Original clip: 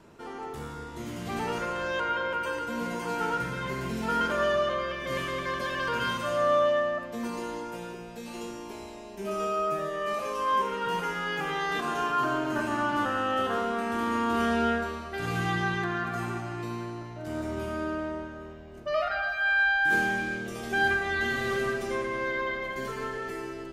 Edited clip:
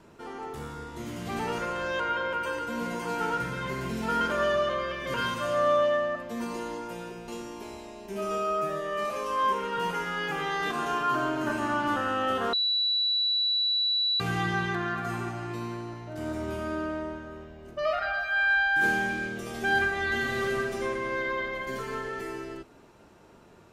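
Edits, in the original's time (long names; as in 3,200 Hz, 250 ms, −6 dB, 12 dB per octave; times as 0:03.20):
0:05.14–0:05.97: remove
0:08.11–0:08.37: remove
0:13.62–0:15.29: beep over 3,940 Hz −23 dBFS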